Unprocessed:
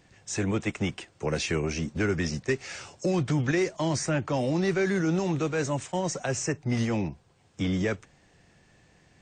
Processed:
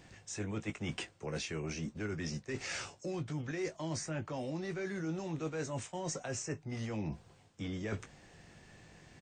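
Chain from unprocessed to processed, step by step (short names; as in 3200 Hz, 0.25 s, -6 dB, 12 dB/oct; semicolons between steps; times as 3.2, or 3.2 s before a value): reverse; compressor 10:1, threshold -38 dBFS, peak gain reduction 17 dB; reverse; doubler 19 ms -9 dB; gain +2 dB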